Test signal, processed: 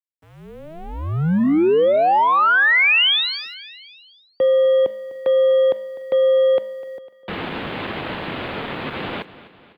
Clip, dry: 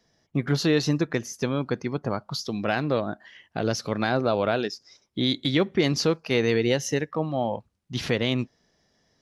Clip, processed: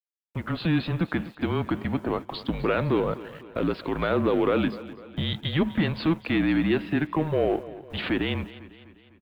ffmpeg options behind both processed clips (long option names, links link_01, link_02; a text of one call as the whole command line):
ffmpeg -i in.wav -filter_complex "[0:a]lowshelf=frequency=460:gain=7,bandreject=frequency=371.3:width_type=h:width=4,bandreject=frequency=742.6:width_type=h:width=4,bandreject=frequency=1113.9:width_type=h:width=4,dynaudnorm=framelen=160:gausssize=7:maxgain=13dB,alimiter=limit=-8.5dB:level=0:latency=1:release=53,aresample=11025,aeval=exprs='sgn(val(0))*max(abs(val(0))-0.00473,0)':channel_layout=same,aresample=44100,aeval=exprs='0.398*(cos(1*acos(clip(val(0)/0.398,-1,1)))-cos(1*PI/2))+0.0178*(cos(2*acos(clip(val(0)/0.398,-1,1)))-cos(2*PI/2))+0.00316*(cos(3*acos(clip(val(0)/0.398,-1,1)))-cos(3*PI/2))+0.0316*(cos(5*acos(clip(val(0)/0.398,-1,1)))-cos(5*PI/2))':channel_layout=same,aeval=exprs='sgn(val(0))*max(abs(val(0))-0.00447,0)':channel_layout=same,highpass=frequency=330:width_type=q:width=0.5412,highpass=frequency=330:width_type=q:width=1.307,lowpass=frequency=3600:width_type=q:width=0.5176,lowpass=frequency=3600:width_type=q:width=0.7071,lowpass=frequency=3600:width_type=q:width=1.932,afreqshift=-160,acrusher=bits=9:mix=0:aa=0.000001,asplit=2[link_01][link_02];[link_02]aecho=0:1:251|502|753|1004:0.141|0.072|0.0367|0.0187[link_03];[link_01][link_03]amix=inputs=2:normalize=0,volume=-2.5dB" out.wav